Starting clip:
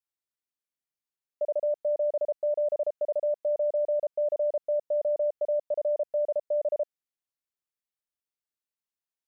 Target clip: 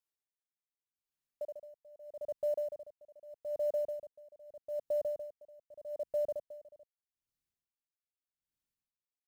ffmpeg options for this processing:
ffmpeg -i in.wav -af "asubboost=boost=4.5:cutoff=250,alimiter=level_in=3.5dB:limit=-24dB:level=0:latency=1:release=131,volume=-3.5dB,acrusher=bits=8:mode=log:mix=0:aa=0.000001,aeval=exprs='val(0)*pow(10,-25*(0.5-0.5*cos(2*PI*0.81*n/s))/20)':channel_layout=same" out.wav

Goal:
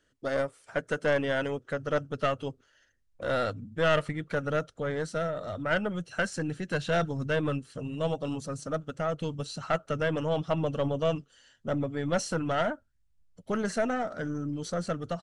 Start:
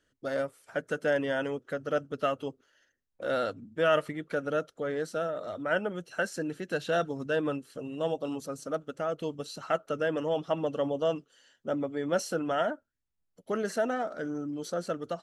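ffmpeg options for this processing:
ffmpeg -i in.wav -af "asubboost=boost=5.5:cutoff=140,aeval=exprs='(tanh(11.2*val(0)+0.5)-tanh(0.5))/11.2':channel_layout=same,aresample=22050,aresample=44100,volume=4.5dB" out.wav

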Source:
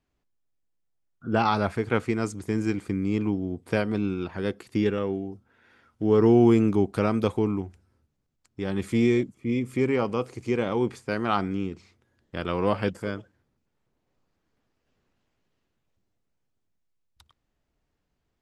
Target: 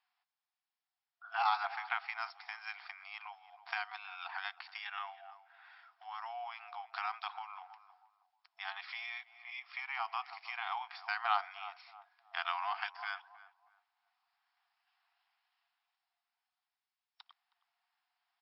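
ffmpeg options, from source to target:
ffmpeg -i in.wav -filter_complex "[0:a]asplit=2[link_01][link_02];[link_02]adelay=317,lowpass=frequency=940:poles=1,volume=-15.5dB,asplit=2[link_03][link_04];[link_04]adelay=317,lowpass=frequency=940:poles=1,volume=0.36,asplit=2[link_05][link_06];[link_06]adelay=317,lowpass=frequency=940:poles=1,volume=0.36[link_07];[link_01][link_03][link_05][link_07]amix=inputs=4:normalize=0,acompressor=threshold=-26dB:ratio=6,afftfilt=real='re*between(b*sr/4096,680,5500)':imag='im*between(b*sr/4096,680,5500)':win_size=4096:overlap=0.75,acontrast=49,volume=-4.5dB" out.wav

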